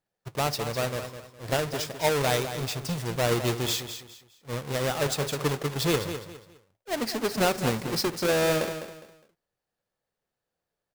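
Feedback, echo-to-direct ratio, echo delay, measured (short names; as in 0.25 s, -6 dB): 29%, -9.5 dB, 0.205 s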